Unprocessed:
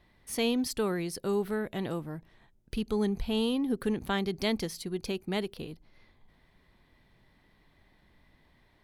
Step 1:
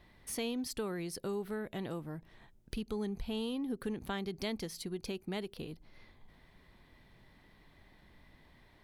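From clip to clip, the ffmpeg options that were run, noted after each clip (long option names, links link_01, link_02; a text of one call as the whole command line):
ffmpeg -i in.wav -af "acompressor=threshold=-45dB:ratio=2,volume=2.5dB" out.wav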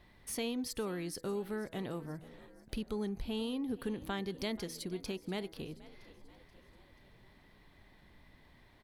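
ffmpeg -i in.wav -filter_complex "[0:a]bandreject=frequency=162.7:width_type=h:width=4,bandreject=frequency=325.4:width_type=h:width=4,bandreject=frequency=488.1:width_type=h:width=4,bandreject=frequency=650.8:width_type=h:width=4,bandreject=frequency=813.5:width_type=h:width=4,bandreject=frequency=976.2:width_type=h:width=4,bandreject=frequency=1138.9:width_type=h:width=4,bandreject=frequency=1301.6:width_type=h:width=4,bandreject=frequency=1464.3:width_type=h:width=4,bandreject=frequency=1627:width_type=h:width=4,bandreject=frequency=1789.7:width_type=h:width=4,bandreject=frequency=1952.4:width_type=h:width=4,bandreject=frequency=2115.1:width_type=h:width=4,asplit=5[link_01][link_02][link_03][link_04][link_05];[link_02]adelay=482,afreqshift=48,volume=-19dB[link_06];[link_03]adelay=964,afreqshift=96,volume=-24.5dB[link_07];[link_04]adelay=1446,afreqshift=144,volume=-30dB[link_08];[link_05]adelay=1928,afreqshift=192,volume=-35.5dB[link_09];[link_01][link_06][link_07][link_08][link_09]amix=inputs=5:normalize=0" out.wav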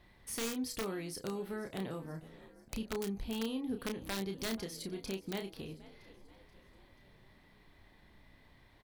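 ffmpeg -i in.wav -filter_complex "[0:a]aeval=exprs='(mod(23.7*val(0)+1,2)-1)/23.7':channel_layout=same,asplit=2[link_01][link_02];[link_02]adelay=31,volume=-6dB[link_03];[link_01][link_03]amix=inputs=2:normalize=0,volume=-1.5dB" out.wav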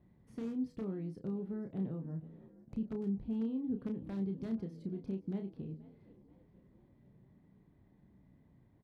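ffmpeg -i in.wav -af "bandpass=frequency=170:width_type=q:width=1.3:csg=0,volume=5dB" out.wav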